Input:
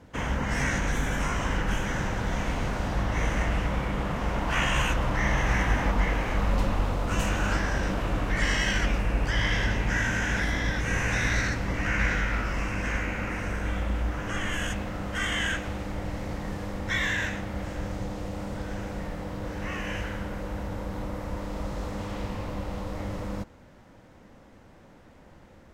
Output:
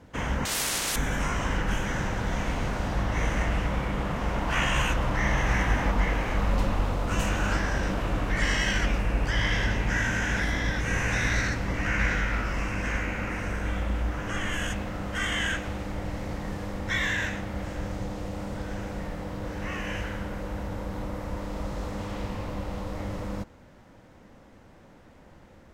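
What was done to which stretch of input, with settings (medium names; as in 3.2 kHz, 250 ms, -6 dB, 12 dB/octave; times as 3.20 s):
0.45–0.96 s: spectrum-flattening compressor 10:1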